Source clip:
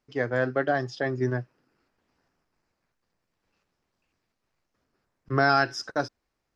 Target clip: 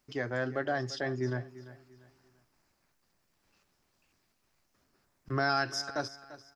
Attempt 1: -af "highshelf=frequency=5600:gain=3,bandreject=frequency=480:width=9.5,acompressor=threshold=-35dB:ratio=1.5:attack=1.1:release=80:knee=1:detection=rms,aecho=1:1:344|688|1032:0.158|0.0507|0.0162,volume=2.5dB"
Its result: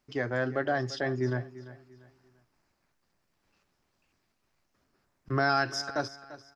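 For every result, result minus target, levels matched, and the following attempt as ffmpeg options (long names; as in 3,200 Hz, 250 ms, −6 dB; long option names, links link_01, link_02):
downward compressor: peak gain reduction −3.5 dB; 8,000 Hz band −2.5 dB
-af "highshelf=frequency=5600:gain=3,bandreject=frequency=480:width=9.5,acompressor=threshold=-44.5dB:ratio=1.5:attack=1.1:release=80:knee=1:detection=rms,aecho=1:1:344|688|1032:0.158|0.0507|0.0162,volume=2.5dB"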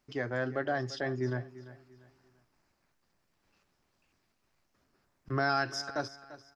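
8,000 Hz band −2.5 dB
-af "highshelf=frequency=5600:gain=10,bandreject=frequency=480:width=9.5,acompressor=threshold=-44.5dB:ratio=1.5:attack=1.1:release=80:knee=1:detection=rms,aecho=1:1:344|688|1032:0.158|0.0507|0.0162,volume=2.5dB"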